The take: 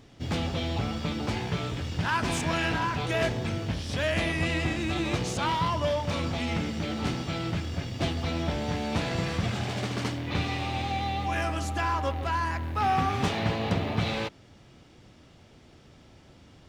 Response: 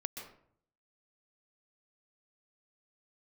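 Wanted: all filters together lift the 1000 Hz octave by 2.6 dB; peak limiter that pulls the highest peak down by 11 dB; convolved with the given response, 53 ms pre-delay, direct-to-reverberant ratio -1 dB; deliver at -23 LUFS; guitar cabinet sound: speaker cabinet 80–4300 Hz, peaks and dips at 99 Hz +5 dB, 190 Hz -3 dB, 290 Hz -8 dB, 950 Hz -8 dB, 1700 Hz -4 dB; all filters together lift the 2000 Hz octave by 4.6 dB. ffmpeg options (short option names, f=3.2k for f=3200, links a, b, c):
-filter_complex "[0:a]equalizer=f=1k:t=o:g=7,equalizer=f=2k:t=o:g=6.5,alimiter=limit=-19.5dB:level=0:latency=1,asplit=2[a][b];[1:a]atrim=start_sample=2205,adelay=53[c];[b][c]afir=irnorm=-1:irlink=0,volume=1.5dB[d];[a][d]amix=inputs=2:normalize=0,highpass=80,equalizer=f=99:t=q:w=4:g=5,equalizer=f=190:t=q:w=4:g=-3,equalizer=f=290:t=q:w=4:g=-8,equalizer=f=950:t=q:w=4:g=-8,equalizer=f=1.7k:t=q:w=4:g=-4,lowpass=f=4.3k:w=0.5412,lowpass=f=4.3k:w=1.3066,volume=4.5dB"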